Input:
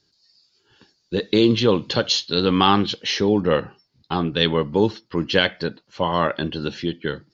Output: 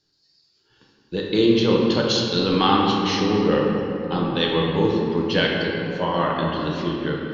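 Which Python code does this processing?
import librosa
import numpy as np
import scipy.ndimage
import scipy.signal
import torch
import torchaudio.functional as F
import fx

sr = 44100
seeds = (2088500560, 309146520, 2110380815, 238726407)

y = fx.room_shoebox(x, sr, seeds[0], volume_m3=150.0, walls='hard', distance_m=0.55)
y = y * librosa.db_to_amplitude(-4.5)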